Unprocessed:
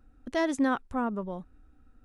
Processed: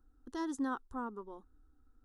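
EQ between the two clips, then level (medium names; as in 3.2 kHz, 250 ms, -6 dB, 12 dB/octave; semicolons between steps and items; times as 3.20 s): static phaser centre 620 Hz, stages 6; -7.0 dB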